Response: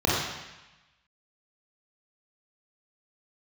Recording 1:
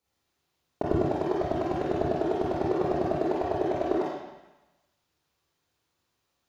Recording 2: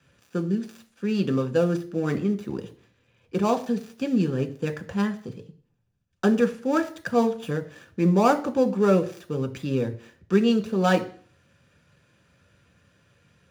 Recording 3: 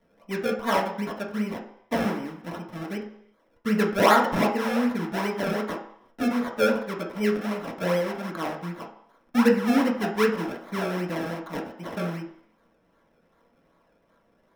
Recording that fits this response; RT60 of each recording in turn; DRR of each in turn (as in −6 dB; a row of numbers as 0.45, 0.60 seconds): 1; 1.0 s, 0.50 s, non-exponential decay; −6.0, 5.5, −2.5 decibels